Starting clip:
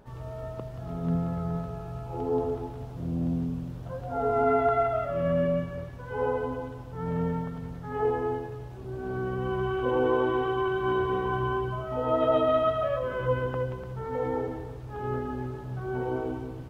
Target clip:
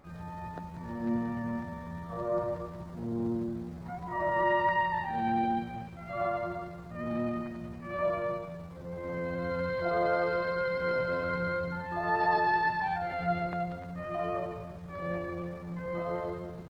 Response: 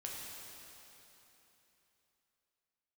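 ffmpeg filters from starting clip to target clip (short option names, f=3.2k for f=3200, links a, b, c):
-af "asetrate=60591,aresample=44100,atempo=0.727827,volume=-3.5dB"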